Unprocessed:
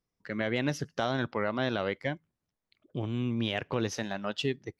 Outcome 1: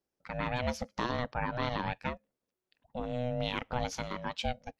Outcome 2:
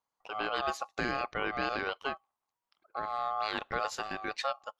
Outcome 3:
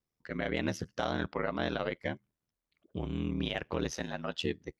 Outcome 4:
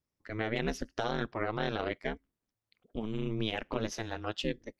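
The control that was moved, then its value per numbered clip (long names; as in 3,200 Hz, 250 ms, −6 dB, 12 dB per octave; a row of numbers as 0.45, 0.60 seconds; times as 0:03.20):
ring modulation, frequency: 370, 960, 40, 110 Hertz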